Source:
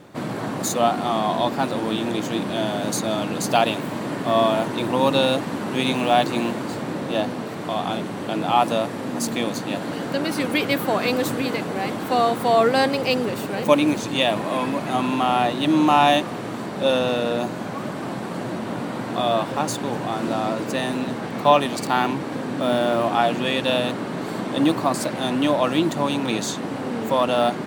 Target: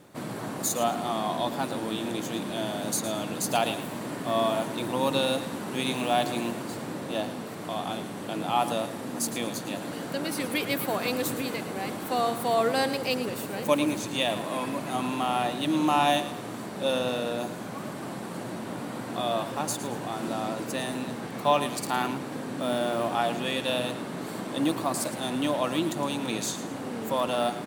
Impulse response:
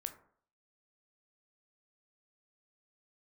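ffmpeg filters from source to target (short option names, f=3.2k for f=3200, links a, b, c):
-filter_complex "[0:a]equalizer=f=12k:w=0.57:g=10,asplit=2[a][b];[b]aecho=0:1:111|222|333:0.237|0.0735|0.0228[c];[a][c]amix=inputs=2:normalize=0,volume=-7.5dB"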